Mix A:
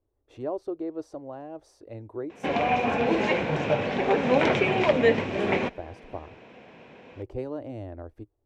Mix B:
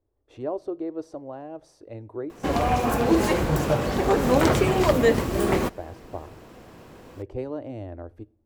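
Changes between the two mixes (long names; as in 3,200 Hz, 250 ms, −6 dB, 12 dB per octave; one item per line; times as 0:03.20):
background: remove loudspeaker in its box 190–4,700 Hz, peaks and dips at 330 Hz −7 dB, 1,200 Hz −8 dB, 2,400 Hz +8 dB, 4,600 Hz −9 dB
reverb: on, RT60 0.60 s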